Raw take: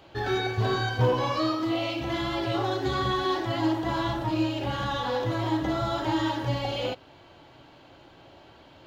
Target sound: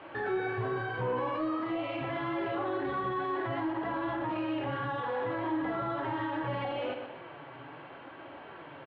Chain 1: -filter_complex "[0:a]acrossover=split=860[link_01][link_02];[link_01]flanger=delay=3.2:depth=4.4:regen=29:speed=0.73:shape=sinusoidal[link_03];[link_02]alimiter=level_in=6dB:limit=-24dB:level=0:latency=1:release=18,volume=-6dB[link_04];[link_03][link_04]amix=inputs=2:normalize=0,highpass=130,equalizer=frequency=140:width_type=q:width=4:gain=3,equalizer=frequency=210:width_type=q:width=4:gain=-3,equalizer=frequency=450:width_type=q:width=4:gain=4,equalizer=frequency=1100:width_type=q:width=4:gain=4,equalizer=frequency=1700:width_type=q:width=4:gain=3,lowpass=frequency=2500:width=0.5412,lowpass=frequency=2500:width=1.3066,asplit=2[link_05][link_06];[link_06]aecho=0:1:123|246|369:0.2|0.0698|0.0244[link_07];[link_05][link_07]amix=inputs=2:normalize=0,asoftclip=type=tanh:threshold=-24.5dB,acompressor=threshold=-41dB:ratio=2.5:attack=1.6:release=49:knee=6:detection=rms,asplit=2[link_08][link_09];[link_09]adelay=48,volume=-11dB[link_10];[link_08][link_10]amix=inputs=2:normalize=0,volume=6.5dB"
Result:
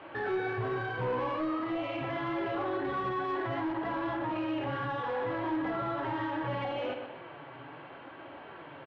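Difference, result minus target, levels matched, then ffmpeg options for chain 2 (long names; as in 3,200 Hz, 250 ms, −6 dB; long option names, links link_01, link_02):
soft clipping: distortion +8 dB
-filter_complex "[0:a]acrossover=split=860[link_01][link_02];[link_01]flanger=delay=3.2:depth=4.4:regen=29:speed=0.73:shape=sinusoidal[link_03];[link_02]alimiter=level_in=6dB:limit=-24dB:level=0:latency=1:release=18,volume=-6dB[link_04];[link_03][link_04]amix=inputs=2:normalize=0,highpass=130,equalizer=frequency=140:width_type=q:width=4:gain=3,equalizer=frequency=210:width_type=q:width=4:gain=-3,equalizer=frequency=450:width_type=q:width=4:gain=4,equalizer=frequency=1100:width_type=q:width=4:gain=4,equalizer=frequency=1700:width_type=q:width=4:gain=3,lowpass=frequency=2500:width=0.5412,lowpass=frequency=2500:width=1.3066,asplit=2[link_05][link_06];[link_06]aecho=0:1:123|246|369:0.2|0.0698|0.0244[link_07];[link_05][link_07]amix=inputs=2:normalize=0,asoftclip=type=tanh:threshold=-18.5dB,acompressor=threshold=-41dB:ratio=2.5:attack=1.6:release=49:knee=6:detection=rms,asplit=2[link_08][link_09];[link_09]adelay=48,volume=-11dB[link_10];[link_08][link_10]amix=inputs=2:normalize=0,volume=6.5dB"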